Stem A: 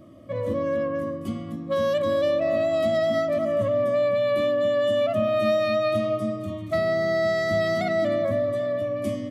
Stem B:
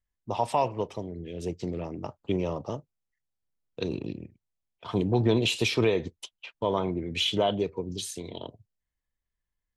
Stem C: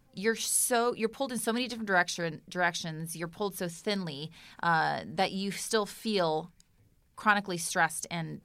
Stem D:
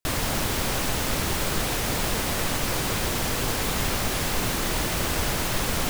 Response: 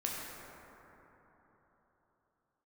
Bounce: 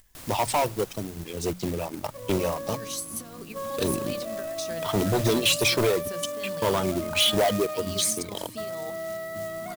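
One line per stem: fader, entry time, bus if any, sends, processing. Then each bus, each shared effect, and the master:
-12.5 dB, 1.85 s, no send, LPF 2400 Hz 12 dB/oct; bell 1000 Hz +11.5 dB 0.48 oct; notch 1000 Hz, Q 24
-4.0 dB, 0.00 s, no send, reverb removal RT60 1.9 s; sample leveller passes 3; upward compressor, threshold -32 dBFS
-8.0 dB, 2.50 s, no send, negative-ratio compressor -32 dBFS, ratio -0.5
-18.5 dB, 0.10 s, no send, auto duck -11 dB, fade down 1.60 s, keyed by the second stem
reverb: off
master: short-mantissa float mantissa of 2-bit; high shelf 5300 Hz +8.5 dB; notches 60/120/180 Hz

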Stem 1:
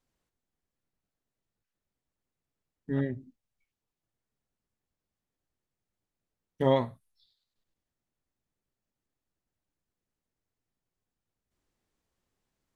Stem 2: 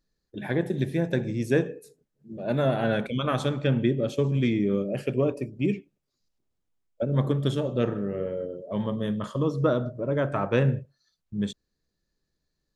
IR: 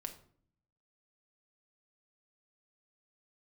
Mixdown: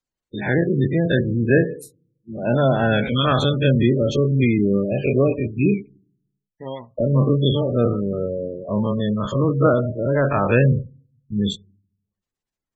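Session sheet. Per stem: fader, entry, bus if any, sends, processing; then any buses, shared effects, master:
-8.5 dB, 0.00 s, no send, dry
+1.0 dB, 0.00 s, send -14.5 dB, spectral dilation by 60 ms; expander -36 dBFS; low shelf 99 Hz +10.5 dB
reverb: on, RT60 0.55 s, pre-delay 5 ms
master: spectral gate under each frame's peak -25 dB strong; high shelf 2000 Hz +10 dB

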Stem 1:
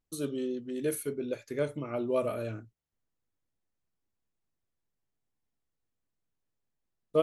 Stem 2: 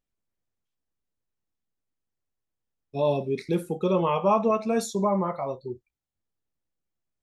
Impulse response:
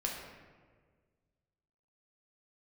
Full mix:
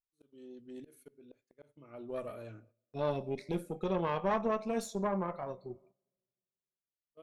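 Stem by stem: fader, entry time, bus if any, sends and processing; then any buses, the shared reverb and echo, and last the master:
-6.5 dB, 0.00 s, send -23.5 dB, auto swell 0.533 s; high shelf 9900 Hz -4 dB
-6.0 dB, 0.00 s, send -23 dB, dry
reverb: on, RT60 1.6 s, pre-delay 6 ms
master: gate -58 dBFS, range -13 dB; tube stage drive 22 dB, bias 0.75

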